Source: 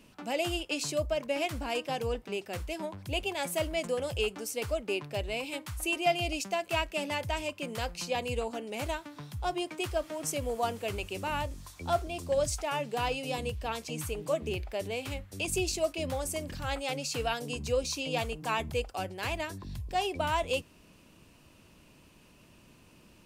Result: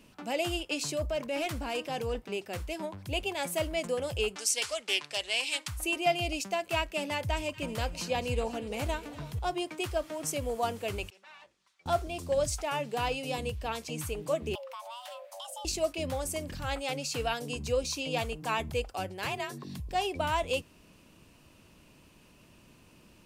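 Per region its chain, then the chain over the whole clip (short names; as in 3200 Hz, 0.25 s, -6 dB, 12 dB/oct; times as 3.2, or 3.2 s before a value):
0.92–2.2 transient shaper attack -5 dB, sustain +3 dB + hard clip -25 dBFS
4.36–5.68 weighting filter ITU-R 468 + Doppler distortion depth 0.1 ms
7.24–9.39 low shelf 220 Hz +5 dB + split-band echo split 1300 Hz, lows 0.324 s, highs 0.238 s, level -15 dB
11.1–11.86 minimum comb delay 5.2 ms + LPF 2200 Hz + differentiator
14.55–15.65 frequency shift +480 Hz + compressor 4:1, threshold -41 dBFS
19.26–19.8 HPF 100 Hz + frequency shift +44 Hz + three-band squash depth 40%
whole clip: dry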